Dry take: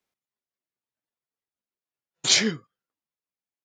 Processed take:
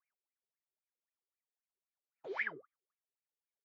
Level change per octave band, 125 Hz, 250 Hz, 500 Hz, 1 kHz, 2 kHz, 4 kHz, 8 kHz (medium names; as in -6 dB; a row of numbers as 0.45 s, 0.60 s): -29.5 dB, -26.0 dB, -12.5 dB, -8.5 dB, -9.5 dB, -38.5 dB, under -40 dB